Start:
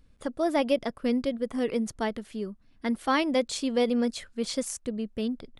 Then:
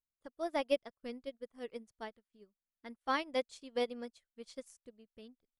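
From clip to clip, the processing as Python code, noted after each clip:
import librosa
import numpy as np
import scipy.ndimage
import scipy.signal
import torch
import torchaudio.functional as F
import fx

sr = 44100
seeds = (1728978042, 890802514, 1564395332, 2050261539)

y = fx.dynamic_eq(x, sr, hz=230.0, q=0.95, threshold_db=-39.0, ratio=4.0, max_db=-6)
y = fx.upward_expand(y, sr, threshold_db=-49.0, expansion=2.5)
y = F.gain(torch.from_numpy(y), -3.5).numpy()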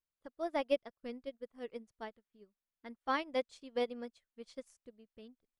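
y = fx.high_shelf(x, sr, hz=5100.0, db=-8.5)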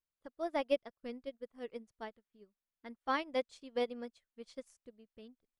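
y = x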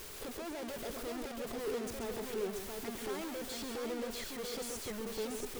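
y = np.sign(x) * np.sqrt(np.mean(np.square(x)))
y = fx.peak_eq(y, sr, hz=410.0, db=13.0, octaves=0.38)
y = fx.echo_multitap(y, sr, ms=(135, 682), db=(-7.0, -4.0))
y = F.gain(torch.from_numpy(y), -2.5).numpy()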